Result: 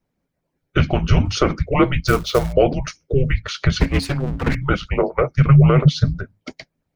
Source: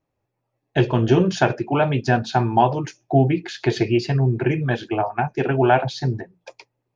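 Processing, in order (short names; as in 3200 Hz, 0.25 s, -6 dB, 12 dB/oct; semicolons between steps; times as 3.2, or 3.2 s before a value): 3.8–4.55 minimum comb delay 6.2 ms; 5.34–6.04 resonant low shelf 230 Hz +13 dB, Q 3; harmonic-percussive split harmonic -10 dB; limiter -10.5 dBFS, peak gain reduction 6.5 dB; frequency shift -280 Hz; 2.07–2.53 short-mantissa float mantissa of 2-bit; gain +7 dB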